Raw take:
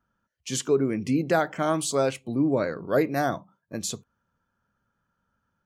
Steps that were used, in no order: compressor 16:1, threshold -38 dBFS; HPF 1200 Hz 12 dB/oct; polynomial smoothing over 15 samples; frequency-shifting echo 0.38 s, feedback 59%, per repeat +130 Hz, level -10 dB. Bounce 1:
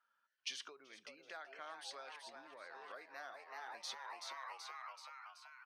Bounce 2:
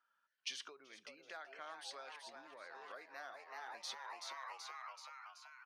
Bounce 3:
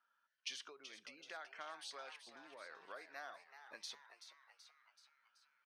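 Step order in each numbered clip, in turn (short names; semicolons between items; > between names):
frequency-shifting echo > polynomial smoothing > compressor > HPF; polynomial smoothing > frequency-shifting echo > compressor > HPF; compressor > HPF > frequency-shifting echo > polynomial smoothing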